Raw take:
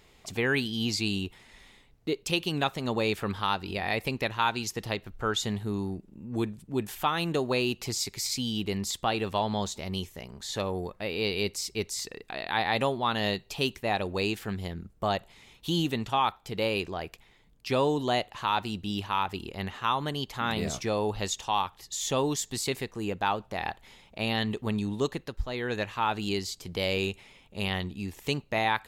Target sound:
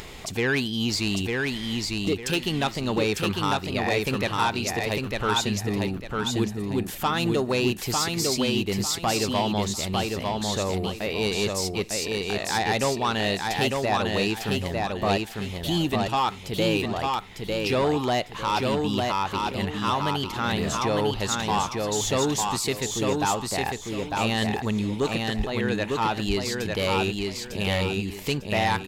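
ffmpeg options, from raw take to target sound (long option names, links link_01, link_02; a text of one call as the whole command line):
ffmpeg -i in.wav -af "acompressor=mode=upward:threshold=-33dB:ratio=2.5,aeval=exprs='0.266*(cos(1*acos(clip(val(0)/0.266,-1,1)))-cos(1*PI/2))+0.0596*(cos(5*acos(clip(val(0)/0.266,-1,1)))-cos(5*PI/2))':channel_layout=same,aecho=1:1:901|1802|2703|3604:0.708|0.212|0.0637|0.0191,volume=-2dB" out.wav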